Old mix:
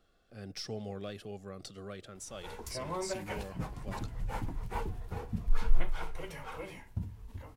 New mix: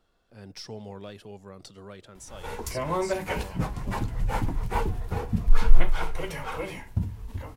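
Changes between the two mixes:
speech: remove Butterworth band-reject 940 Hz, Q 4.4
background +9.5 dB

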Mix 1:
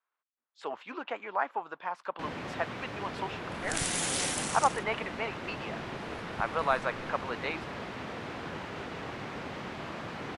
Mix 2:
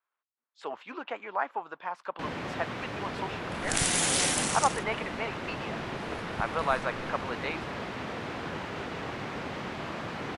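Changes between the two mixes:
first sound +3.0 dB
second sound +5.0 dB

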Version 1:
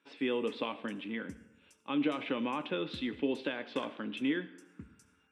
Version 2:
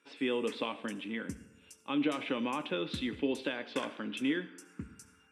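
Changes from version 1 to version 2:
background +6.0 dB
master: add high-shelf EQ 5,300 Hz +6.5 dB

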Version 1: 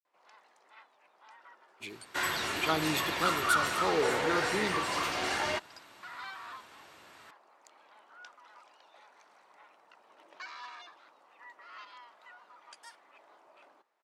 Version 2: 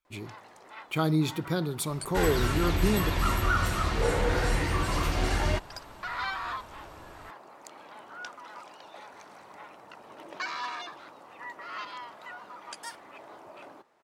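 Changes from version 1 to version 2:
speech: entry −1.70 s
first sound +11.0 dB
master: remove meter weighting curve A

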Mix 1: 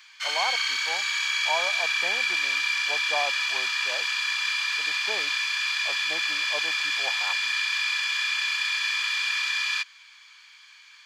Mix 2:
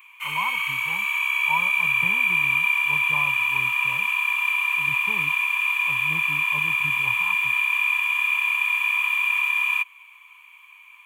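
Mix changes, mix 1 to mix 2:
speech: remove high-pass with resonance 800 Hz, resonance Q 1.8
master: add drawn EQ curve 130 Hz 0 dB, 310 Hz −15 dB, 700 Hz −17 dB, 1,000 Hz +13 dB, 1,600 Hz −15 dB, 2,500 Hz +9 dB, 4,700 Hz −29 dB, 12,000 Hz +14 dB

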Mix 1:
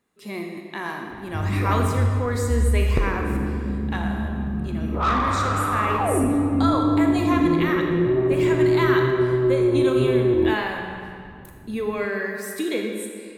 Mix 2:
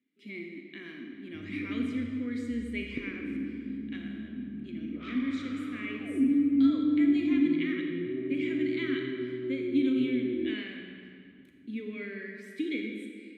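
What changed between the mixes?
speech +3.5 dB
master: add formant filter i

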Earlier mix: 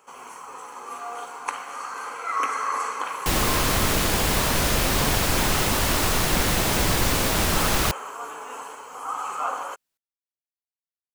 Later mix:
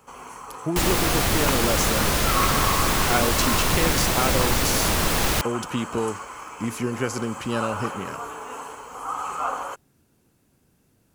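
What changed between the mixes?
speech: unmuted
first sound: remove high-pass filter 400 Hz 6 dB per octave
second sound: entry −2.50 s

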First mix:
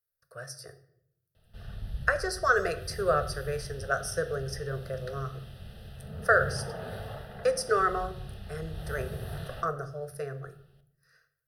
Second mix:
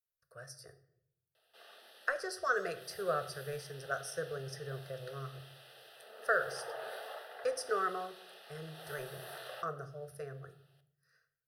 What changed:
speech −8.0 dB
background: add Bessel high-pass filter 610 Hz, order 8

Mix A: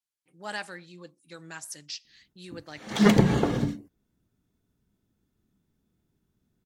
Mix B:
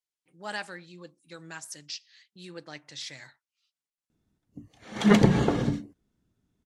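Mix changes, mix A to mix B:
background: entry +2.05 s
master: add low-pass filter 9,800 Hz 12 dB per octave

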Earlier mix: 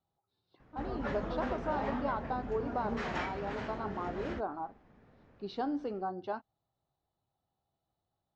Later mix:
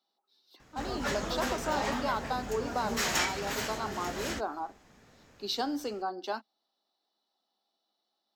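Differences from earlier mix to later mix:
speech: add Chebyshev high-pass filter 210 Hz, order 5
master: remove head-to-tape spacing loss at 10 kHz 42 dB

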